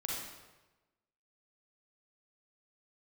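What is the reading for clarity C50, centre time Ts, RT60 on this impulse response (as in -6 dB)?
-1.5 dB, 79 ms, 1.1 s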